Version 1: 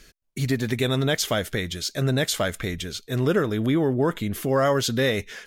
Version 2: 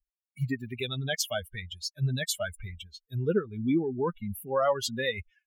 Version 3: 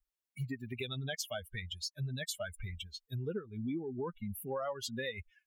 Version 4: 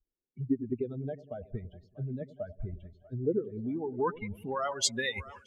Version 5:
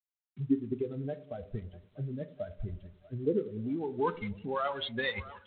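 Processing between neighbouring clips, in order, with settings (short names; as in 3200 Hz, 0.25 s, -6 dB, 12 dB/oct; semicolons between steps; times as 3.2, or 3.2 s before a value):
per-bin expansion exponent 3
compressor 4:1, threshold -38 dBFS, peak gain reduction 14.5 dB; gain +1 dB
low-pass sweep 370 Hz -> 8300 Hz, 3.35–4.91; harmonic-percussive split percussive +9 dB; split-band echo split 670 Hz, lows 95 ms, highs 0.642 s, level -15.5 dB
on a send at -12 dB: reverb, pre-delay 3 ms; on the sum: G.726 24 kbps 8000 Hz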